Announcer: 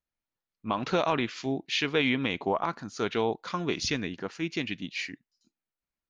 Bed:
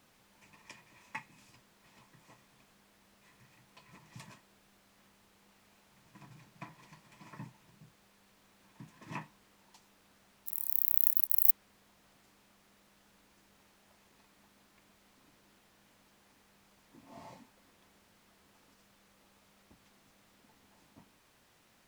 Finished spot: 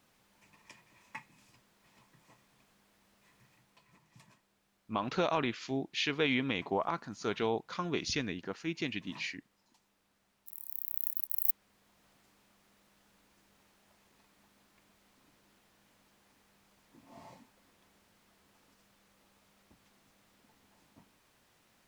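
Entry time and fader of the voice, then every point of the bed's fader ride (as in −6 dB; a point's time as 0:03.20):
4.25 s, −4.5 dB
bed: 0:03.45 −3 dB
0:04.10 −9.5 dB
0:10.81 −9.5 dB
0:12.04 −2 dB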